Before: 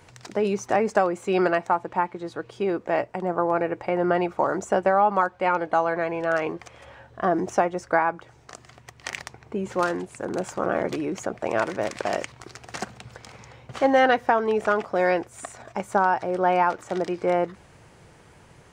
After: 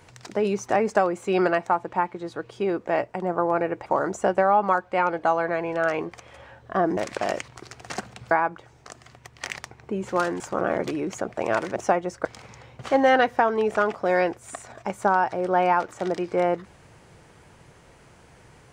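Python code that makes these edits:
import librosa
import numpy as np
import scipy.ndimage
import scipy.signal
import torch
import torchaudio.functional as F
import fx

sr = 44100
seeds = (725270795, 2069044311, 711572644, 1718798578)

y = fx.edit(x, sr, fx.cut(start_s=3.86, length_s=0.48),
    fx.swap(start_s=7.45, length_s=0.49, other_s=11.81, other_length_s=1.34),
    fx.cut(start_s=10.03, length_s=0.42), tone=tone)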